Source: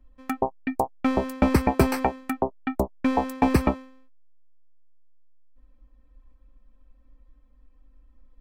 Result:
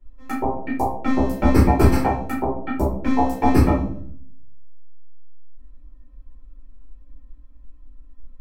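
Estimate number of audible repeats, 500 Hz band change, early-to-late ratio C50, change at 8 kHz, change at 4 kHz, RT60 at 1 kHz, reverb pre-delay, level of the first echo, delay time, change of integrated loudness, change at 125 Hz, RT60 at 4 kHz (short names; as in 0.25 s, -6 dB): none, +3.0 dB, 5.0 dB, +1.5 dB, +0.5 dB, 0.50 s, 5 ms, none, none, +4.5 dB, +8.5 dB, 0.35 s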